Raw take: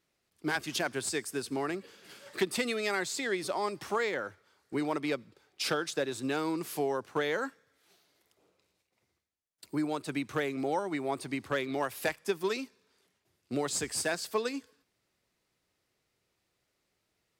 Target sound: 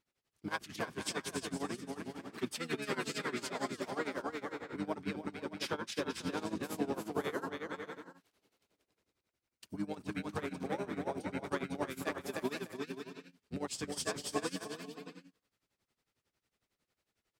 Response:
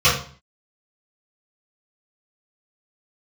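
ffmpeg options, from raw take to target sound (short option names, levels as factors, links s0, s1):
-filter_complex "[0:a]asplit=2[s0][s1];[s1]asetrate=29433,aresample=44100,atempo=1.49831,volume=0.794[s2];[s0][s2]amix=inputs=2:normalize=0,aecho=1:1:310|496|607.6|674.6|714.7:0.631|0.398|0.251|0.158|0.1,tremolo=f=11:d=0.87,volume=0.501"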